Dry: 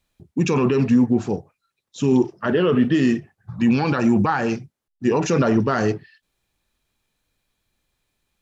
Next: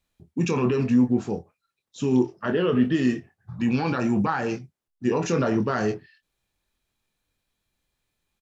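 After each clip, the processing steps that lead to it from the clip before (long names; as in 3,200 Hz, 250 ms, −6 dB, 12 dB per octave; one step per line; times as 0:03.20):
double-tracking delay 24 ms −8 dB
level −5 dB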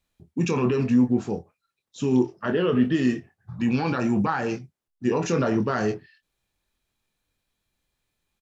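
no processing that can be heard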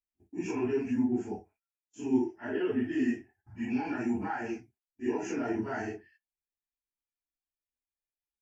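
random phases in long frames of 100 ms
noise gate −53 dBFS, range −18 dB
phaser with its sweep stopped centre 780 Hz, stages 8
level −6 dB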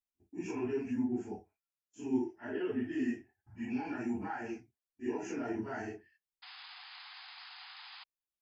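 sound drawn into the spectrogram noise, 0:06.42–0:08.04, 710–5,100 Hz −46 dBFS
level −5 dB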